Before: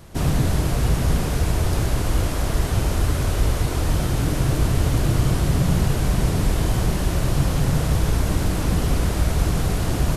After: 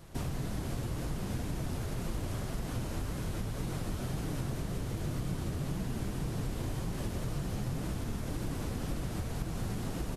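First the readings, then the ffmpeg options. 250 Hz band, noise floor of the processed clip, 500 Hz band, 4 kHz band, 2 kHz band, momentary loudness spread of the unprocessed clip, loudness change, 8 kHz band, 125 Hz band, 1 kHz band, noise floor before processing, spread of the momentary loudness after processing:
-12.5 dB, -38 dBFS, -14.0 dB, -15.0 dB, -15.0 dB, 2 LU, -15.0 dB, -15.5 dB, -15.0 dB, -15.0 dB, -24 dBFS, 1 LU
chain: -filter_complex "[0:a]asplit=9[a][b][c][d][e][f][g][h][i];[b]adelay=193,afreqshift=67,volume=-6.5dB[j];[c]adelay=386,afreqshift=134,volume=-11.1dB[k];[d]adelay=579,afreqshift=201,volume=-15.7dB[l];[e]adelay=772,afreqshift=268,volume=-20.2dB[m];[f]adelay=965,afreqshift=335,volume=-24.8dB[n];[g]adelay=1158,afreqshift=402,volume=-29.4dB[o];[h]adelay=1351,afreqshift=469,volume=-34dB[p];[i]adelay=1544,afreqshift=536,volume=-38.6dB[q];[a][j][k][l][m][n][o][p][q]amix=inputs=9:normalize=0,acompressor=threshold=-24dB:ratio=6,flanger=delay=5.5:depth=4.3:regen=-45:speed=1.9:shape=triangular,volume=-4dB"

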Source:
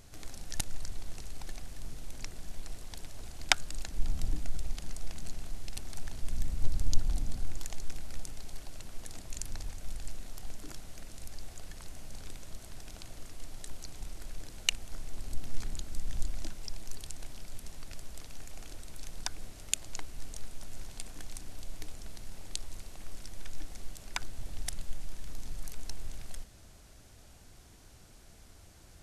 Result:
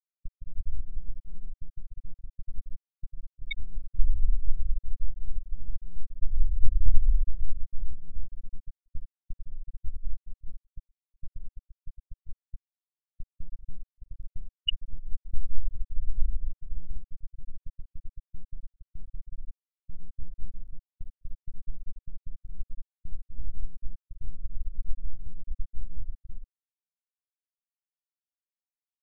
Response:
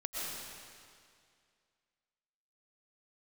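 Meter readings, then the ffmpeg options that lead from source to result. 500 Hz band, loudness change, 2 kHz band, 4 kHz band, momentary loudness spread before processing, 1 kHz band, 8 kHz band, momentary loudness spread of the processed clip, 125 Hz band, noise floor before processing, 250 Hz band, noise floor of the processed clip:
under -15 dB, +2.0 dB, -8.0 dB, -1.5 dB, 14 LU, under -25 dB, under -40 dB, 20 LU, +4.5 dB, -55 dBFS, -6.5 dB, under -85 dBFS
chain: -filter_complex "[0:a]asplit=2[a][b];[b]adelay=63,lowpass=f=3.2k:p=1,volume=-9dB,asplit=2[c][d];[d]adelay=63,lowpass=f=3.2k:p=1,volume=0.3,asplit=2[e][f];[f]adelay=63,lowpass=f=3.2k:p=1,volume=0.3[g];[a][c][e][g]amix=inputs=4:normalize=0,afftfilt=real='re*gte(hypot(re,im),0.355)':imag='im*gte(hypot(re,im),0.355)':win_size=1024:overlap=0.75,agate=range=-21dB:threshold=-43dB:ratio=16:detection=peak,volume=8dB"

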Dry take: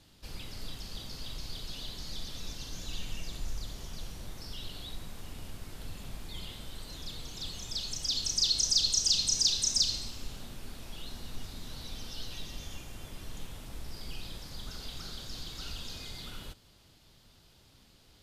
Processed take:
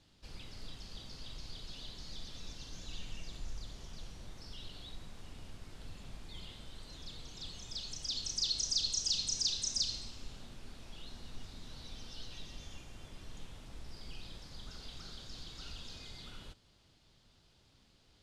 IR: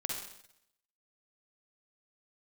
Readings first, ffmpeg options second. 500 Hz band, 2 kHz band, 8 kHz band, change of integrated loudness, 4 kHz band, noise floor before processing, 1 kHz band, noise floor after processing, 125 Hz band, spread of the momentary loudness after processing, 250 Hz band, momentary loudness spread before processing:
-6.0 dB, -6.0 dB, -7.5 dB, -7.0 dB, -6.5 dB, -61 dBFS, -6.0 dB, -67 dBFS, -6.0 dB, 21 LU, -6.0 dB, 21 LU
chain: -af "lowpass=7.7k,volume=-6dB"

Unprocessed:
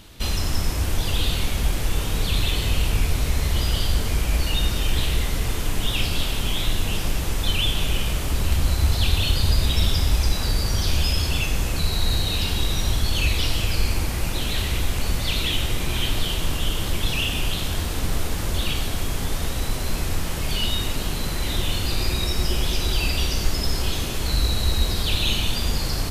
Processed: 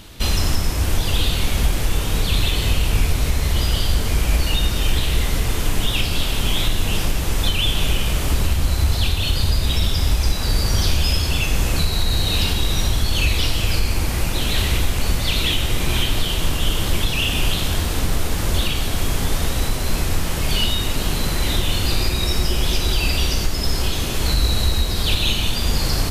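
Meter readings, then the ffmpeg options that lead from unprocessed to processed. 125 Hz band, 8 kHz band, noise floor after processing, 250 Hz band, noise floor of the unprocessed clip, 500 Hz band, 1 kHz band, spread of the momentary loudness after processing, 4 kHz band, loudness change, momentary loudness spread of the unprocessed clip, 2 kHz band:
+3.0 dB, +3.5 dB, -23 dBFS, +3.5 dB, -26 dBFS, +3.5 dB, +3.5 dB, 3 LU, +3.5 dB, +3.5 dB, 5 LU, +3.5 dB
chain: -af "alimiter=limit=-12.5dB:level=0:latency=1:release=385,volume=5dB"

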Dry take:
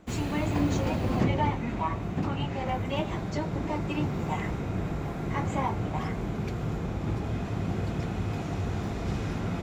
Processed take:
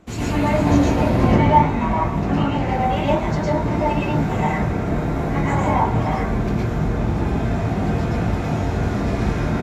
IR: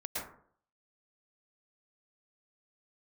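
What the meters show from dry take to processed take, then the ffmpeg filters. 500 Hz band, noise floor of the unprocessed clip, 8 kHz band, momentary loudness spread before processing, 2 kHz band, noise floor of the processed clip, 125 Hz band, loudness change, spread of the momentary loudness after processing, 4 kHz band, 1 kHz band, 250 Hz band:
+11.5 dB, -34 dBFS, +7.0 dB, 5 LU, +10.0 dB, -23 dBFS, +9.5 dB, +10.5 dB, 6 LU, +6.5 dB, +12.5 dB, +10.5 dB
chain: -filter_complex "[0:a]asplit=2[a][b];[b]adelay=18,volume=-11dB[c];[a][c]amix=inputs=2:normalize=0[d];[1:a]atrim=start_sample=2205[e];[d][e]afir=irnorm=-1:irlink=0,volume=7.5dB" -ar 32000 -c:a libvorbis -b:a 64k

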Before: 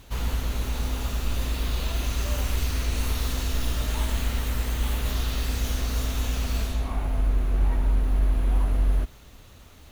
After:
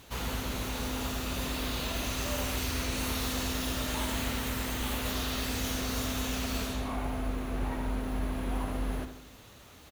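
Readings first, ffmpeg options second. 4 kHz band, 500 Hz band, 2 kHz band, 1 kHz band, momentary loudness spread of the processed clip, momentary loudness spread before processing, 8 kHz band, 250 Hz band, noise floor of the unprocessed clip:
0.0 dB, 0.0 dB, +0.5 dB, +0.5 dB, 4 LU, 5 LU, 0.0 dB, +1.5 dB, -48 dBFS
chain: -filter_complex "[0:a]highpass=f=170:p=1,asplit=2[a][b];[b]adelay=78,lowpass=f=2k:p=1,volume=-8dB,asplit=2[c][d];[d]adelay=78,lowpass=f=2k:p=1,volume=0.52,asplit=2[e][f];[f]adelay=78,lowpass=f=2k:p=1,volume=0.52,asplit=2[g][h];[h]adelay=78,lowpass=f=2k:p=1,volume=0.52,asplit=2[i][j];[j]adelay=78,lowpass=f=2k:p=1,volume=0.52,asplit=2[k][l];[l]adelay=78,lowpass=f=2k:p=1,volume=0.52[m];[c][e][g][i][k][m]amix=inputs=6:normalize=0[n];[a][n]amix=inputs=2:normalize=0"

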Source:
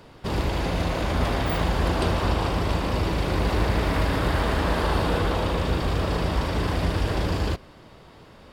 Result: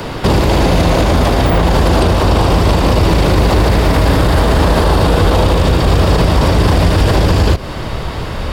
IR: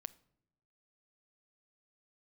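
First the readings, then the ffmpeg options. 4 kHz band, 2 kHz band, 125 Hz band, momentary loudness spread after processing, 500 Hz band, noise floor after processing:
+12.5 dB, +10.0 dB, +14.0 dB, 3 LU, +13.5 dB, -22 dBFS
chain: -filter_complex "[0:a]asubboost=boost=2.5:cutoff=120,acrossover=split=110|920|3800[a][b][c][d];[a]acompressor=threshold=-36dB:ratio=4[e];[b]acompressor=threshold=-33dB:ratio=4[f];[c]acompressor=threshold=-47dB:ratio=4[g];[d]acompressor=threshold=-49dB:ratio=4[h];[e][f][g][h]amix=inputs=4:normalize=0,alimiter=level_in=27dB:limit=-1dB:release=50:level=0:latency=1,volume=-1.5dB"

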